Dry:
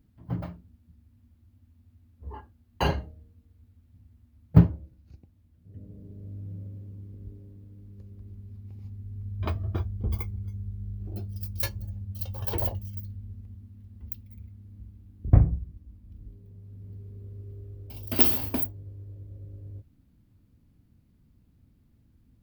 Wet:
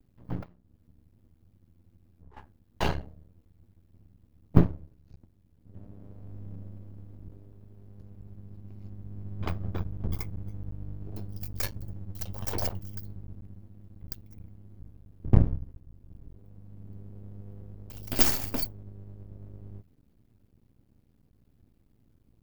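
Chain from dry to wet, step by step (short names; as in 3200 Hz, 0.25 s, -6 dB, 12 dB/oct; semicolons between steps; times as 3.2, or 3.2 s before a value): half-wave rectifier; 0.43–2.37 compressor 5:1, threshold -52 dBFS, peak gain reduction 16.5 dB; gain +1.5 dB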